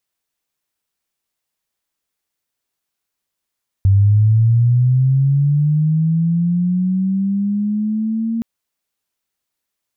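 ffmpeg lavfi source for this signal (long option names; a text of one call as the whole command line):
ffmpeg -f lavfi -i "aevalsrc='pow(10,(-8-9*t/4.57)/20)*sin(2*PI*(96*t+134*t*t/(2*4.57)))':duration=4.57:sample_rate=44100" out.wav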